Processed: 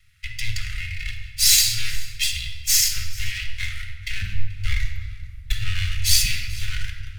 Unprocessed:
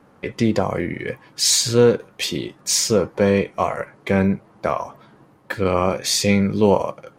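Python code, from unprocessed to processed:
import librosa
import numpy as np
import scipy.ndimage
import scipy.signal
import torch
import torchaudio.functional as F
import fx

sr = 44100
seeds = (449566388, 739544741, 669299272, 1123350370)

y = fx.lower_of_two(x, sr, delay_ms=1.5)
y = scipy.signal.sosfilt(scipy.signal.cheby2(4, 50, [210.0, 960.0], 'bandstop', fs=sr, output='sos'), y)
y = fx.low_shelf(y, sr, hz=470.0, db=9.0, at=(4.22, 6.26))
y = y + 10.0 ** (-22.5 / 20.0) * np.pad(y, (int(434 * sr / 1000.0), 0))[:len(y)]
y = fx.room_shoebox(y, sr, seeds[0], volume_m3=1900.0, walls='mixed', distance_m=1.4)
y = y * librosa.db_to_amplitude(3.0)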